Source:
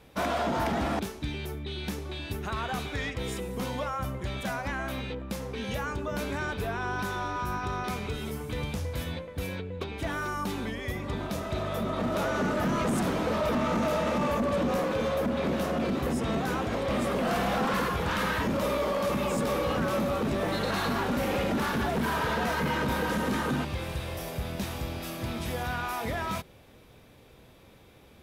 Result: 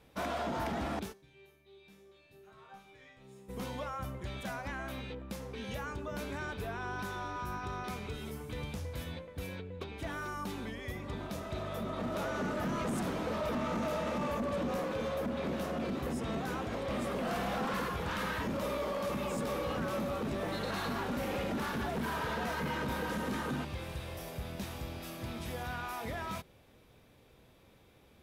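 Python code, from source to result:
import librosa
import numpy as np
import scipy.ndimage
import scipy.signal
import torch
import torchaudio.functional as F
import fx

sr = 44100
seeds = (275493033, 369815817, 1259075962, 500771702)

y = fx.resonator_bank(x, sr, root=48, chord='minor', decay_s=0.61, at=(1.12, 3.48), fade=0.02)
y = y * 10.0 ** (-7.0 / 20.0)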